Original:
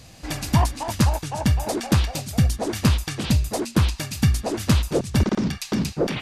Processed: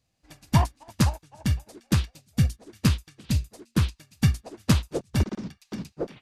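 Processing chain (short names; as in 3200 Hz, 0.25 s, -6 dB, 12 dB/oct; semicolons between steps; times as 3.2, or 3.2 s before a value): 1.46–4.08 dynamic EQ 760 Hz, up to -7 dB, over -41 dBFS, Q 1.2; upward expander 2.5:1, over -33 dBFS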